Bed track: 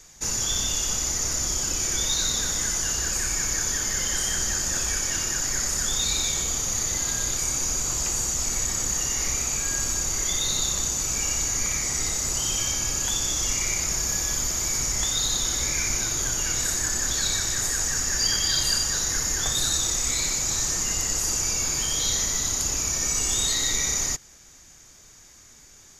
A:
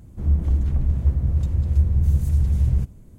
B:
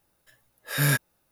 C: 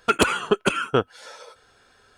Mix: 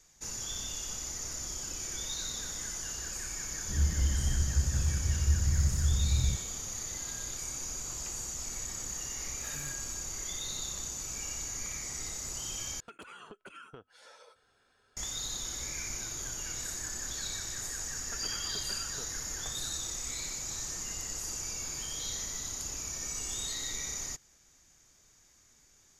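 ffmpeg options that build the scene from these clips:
-filter_complex "[3:a]asplit=2[s0][s1];[0:a]volume=0.237[s2];[2:a]acompressor=threshold=0.0126:ratio=6:attack=3.2:release=140:knee=1:detection=peak[s3];[s0]acompressor=threshold=0.0251:ratio=12:attack=3.2:release=84:knee=6:detection=rms[s4];[s1]acompressor=threshold=0.0355:ratio=6:attack=3.2:release=140:knee=1:detection=peak[s5];[s2]asplit=2[s6][s7];[s6]atrim=end=12.804[s8];[s4]atrim=end=2.17,asetpts=PTS-STARTPTS,volume=0.237[s9];[s7]atrim=start=14.966[s10];[1:a]atrim=end=3.18,asetpts=PTS-STARTPTS,volume=0.355,afade=t=in:d=0.004:c=hsin,afade=t=out:st=3.176:d=0.004:c=hsin,adelay=3510[s11];[s3]atrim=end=1.31,asetpts=PTS-STARTPTS,volume=0.531,afade=t=in:d=0.004:c=hsin,afade=t=out:st=1.306:d=0.004:c=hsin,adelay=8760[s12];[s5]atrim=end=2.17,asetpts=PTS-STARTPTS,volume=0.168,afade=t=in:d=0.004:c=hsin,afade=t=out:st=2.166:d=0.004:c=hsin,adelay=18040[s13];[s8][s9]acrossfade=d=0.004:c1=hsin:c2=hsin[s14];[s14][s10]acrossfade=d=0.004:c1=hsin:c2=hsin[s15];[s15][s11][s12][s13]amix=inputs=4:normalize=0"

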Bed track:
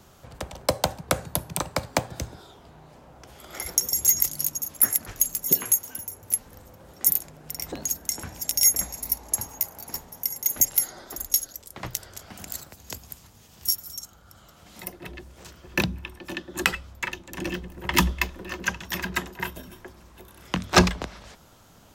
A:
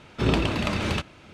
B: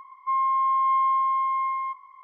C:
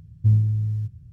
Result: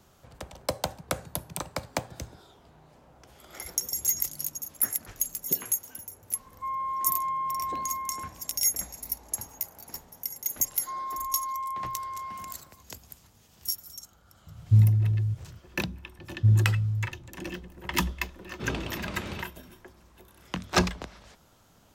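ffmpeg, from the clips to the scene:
-filter_complex "[2:a]asplit=2[s0][s1];[3:a]asplit=2[s2][s3];[0:a]volume=0.473[s4];[s0]atrim=end=2.23,asetpts=PTS-STARTPTS,volume=0.376,afade=t=in:d=0.004:c=hsin,afade=t=out:st=2.226:d=0.004:c=hsin,adelay=6350[s5];[s1]atrim=end=2.23,asetpts=PTS-STARTPTS,volume=0.266,afade=t=in:d=0.004:c=hsin,afade=t=out:st=2.226:d=0.004:c=hsin,adelay=10600[s6];[s2]atrim=end=1.12,asetpts=PTS-STARTPTS,volume=0.944,afade=t=in:d=0.004:c=hsin,afade=t=out:st=1.116:d=0.004:c=hsin,adelay=14470[s7];[s3]atrim=end=1.12,asetpts=PTS-STARTPTS,volume=0.75,afade=t=in:d=0.004:c=hsin,afade=t=out:st=1.116:d=0.004:c=hsin,adelay=16190[s8];[1:a]atrim=end=1.33,asetpts=PTS-STARTPTS,volume=0.282,afade=t=in:d=0.004:c=hsin,afade=t=out:st=1.326:d=0.004:c=hsin,adelay=18410[s9];[s4][s5][s6][s7][s8][s9]amix=inputs=6:normalize=0"

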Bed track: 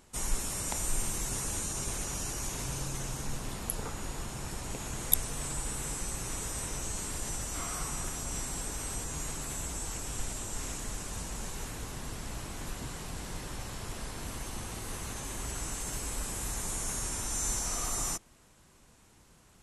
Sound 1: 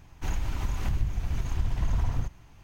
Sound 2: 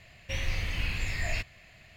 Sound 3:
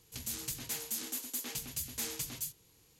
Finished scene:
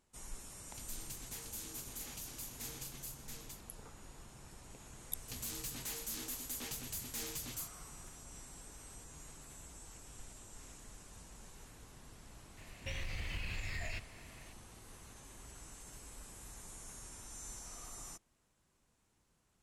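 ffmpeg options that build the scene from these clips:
-filter_complex "[3:a]asplit=2[s0][s1];[0:a]volume=0.158[s2];[s0]aecho=1:1:681:0.668[s3];[s1]asoftclip=type=tanh:threshold=0.0141[s4];[2:a]acompressor=threshold=0.0251:ratio=6:attack=3.2:release=140:knee=1:detection=peak[s5];[s3]atrim=end=2.99,asetpts=PTS-STARTPTS,volume=0.316,afade=t=in:d=0.004:c=hsin,afade=t=out:st=2.986:d=0.004:c=hsin,adelay=620[s6];[s4]atrim=end=2.99,asetpts=PTS-STARTPTS,volume=0.944,afade=t=in:d=0.004:c=hsin,afade=t=out:st=2.986:d=0.004:c=hsin,adelay=5160[s7];[s5]atrim=end=1.96,asetpts=PTS-STARTPTS,volume=0.631,afade=t=in:d=0.004:c=hsin,afade=t=out:st=1.956:d=0.004:c=hsin,adelay=12570[s8];[s2][s6][s7][s8]amix=inputs=4:normalize=0"

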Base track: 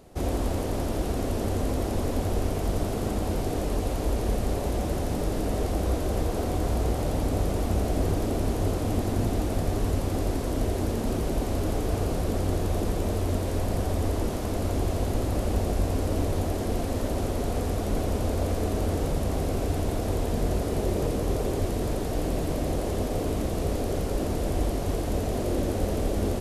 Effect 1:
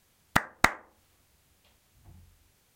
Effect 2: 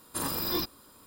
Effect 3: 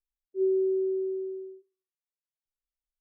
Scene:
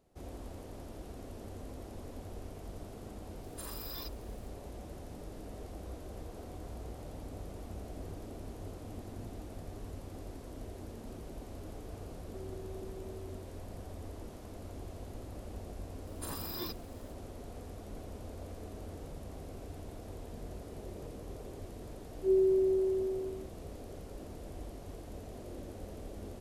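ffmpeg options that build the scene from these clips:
-filter_complex "[2:a]asplit=2[s0][s1];[3:a]asplit=2[s2][s3];[0:a]volume=0.119[s4];[s0]equalizer=f=260:w=0.58:g=-14[s5];[s2]acompressor=threshold=0.0251:ratio=6:attack=3.2:release=140:knee=1:detection=peak[s6];[s5]atrim=end=1.06,asetpts=PTS-STARTPTS,volume=0.251,afade=t=in:d=0.004:c=hsin,afade=t=out:st=1.056:d=0.004:c=hsin,adelay=3430[s7];[s6]atrim=end=3,asetpts=PTS-STARTPTS,volume=0.2,afade=t=in:d=0.004:c=hsin,afade=t=out:st=2.996:d=0.004:c=hsin,adelay=11980[s8];[s1]atrim=end=1.06,asetpts=PTS-STARTPTS,volume=0.316,afade=t=in:d=0.004:c=hsin,afade=t=out:st=1.056:d=0.004:c=hsin,adelay=16070[s9];[s3]atrim=end=3,asetpts=PTS-STARTPTS,volume=0.891,afade=t=in:d=0.004:c=hsin,afade=t=out:st=2.996:d=0.004:c=hsin,adelay=21880[s10];[s4][s7][s8][s9][s10]amix=inputs=5:normalize=0"

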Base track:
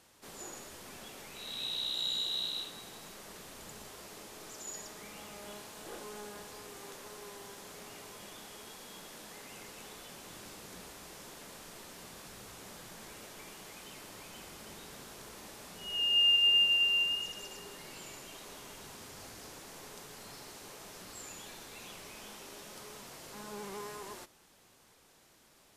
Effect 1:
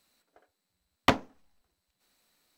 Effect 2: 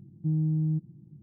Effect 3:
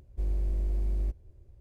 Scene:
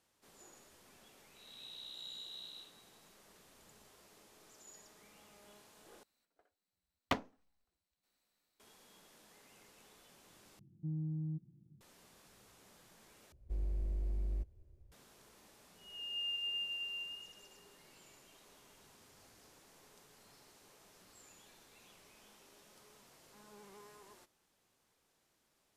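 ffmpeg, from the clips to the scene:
-filter_complex "[0:a]volume=0.2,asplit=4[s0][s1][s2][s3];[s0]atrim=end=6.034[s4];[1:a]atrim=end=2.57,asetpts=PTS-STARTPTS,volume=0.266[s5];[s1]atrim=start=8.596:end=10.594[s6];[2:a]atrim=end=1.22,asetpts=PTS-STARTPTS,volume=0.237[s7];[s2]atrim=start=11.806:end=13.324[s8];[3:a]atrim=end=1.6,asetpts=PTS-STARTPTS,volume=0.398[s9];[s3]atrim=start=14.916[s10];[s4][s5]acrossfade=d=0.004:c1=hsin:c2=hsin[s11];[s11][s6]acrossfade=d=0.004:c1=hsin:c2=hsin[s12];[s12][s7]acrossfade=d=0.004:c1=hsin:c2=hsin[s13];[s13][s8]acrossfade=d=0.004:c1=hsin:c2=hsin[s14];[s14][s9]acrossfade=d=0.004:c1=hsin:c2=hsin[s15];[s15][s10]acrossfade=d=0.004:c1=hsin:c2=hsin"

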